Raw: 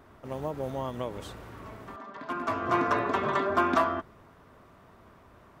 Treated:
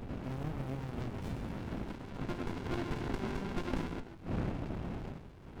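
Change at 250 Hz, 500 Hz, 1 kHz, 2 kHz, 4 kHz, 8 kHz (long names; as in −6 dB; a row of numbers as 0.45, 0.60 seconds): −3.0 dB, −10.5 dB, −16.5 dB, −12.0 dB, −6.0 dB, can't be measured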